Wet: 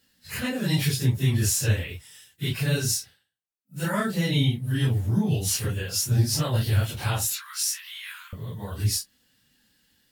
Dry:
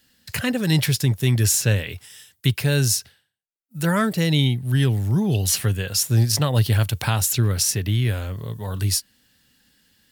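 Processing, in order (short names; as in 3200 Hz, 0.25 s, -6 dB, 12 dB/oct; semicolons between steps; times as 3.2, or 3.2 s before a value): phase scrambler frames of 0.1 s; 7.32–8.33 steep high-pass 1000 Hz 72 dB/oct; gain -4.5 dB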